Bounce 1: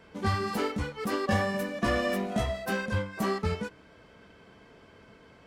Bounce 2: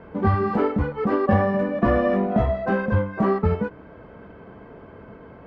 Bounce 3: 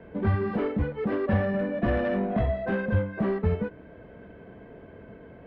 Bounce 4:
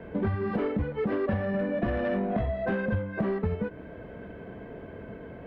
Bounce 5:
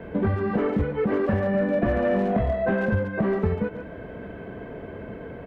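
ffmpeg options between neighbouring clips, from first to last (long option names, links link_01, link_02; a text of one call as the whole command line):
ffmpeg -i in.wav -filter_complex "[0:a]lowpass=1200,asplit=2[link_01][link_02];[link_02]acompressor=threshold=-36dB:ratio=6,volume=-1.5dB[link_03];[link_01][link_03]amix=inputs=2:normalize=0,volume=7dB" out.wav
ffmpeg -i in.wav -filter_complex "[0:a]superequalizer=9b=0.501:10b=0.398:14b=0.501:15b=0.316,acrossover=split=170|1700[link_01][link_02][link_03];[link_02]asoftclip=type=tanh:threshold=-20dB[link_04];[link_01][link_04][link_03]amix=inputs=3:normalize=0,volume=-3dB" out.wav
ffmpeg -i in.wav -af "acompressor=threshold=-30dB:ratio=6,volume=4.5dB" out.wav
ffmpeg -i in.wav -filter_complex "[0:a]acrossover=split=2700[link_01][link_02];[link_02]acompressor=threshold=-59dB:ratio=4:attack=1:release=60[link_03];[link_01][link_03]amix=inputs=2:normalize=0,asplit=2[link_04][link_05];[link_05]adelay=140,highpass=300,lowpass=3400,asoftclip=type=hard:threshold=-26dB,volume=-7dB[link_06];[link_04][link_06]amix=inputs=2:normalize=0,volume=4.5dB" out.wav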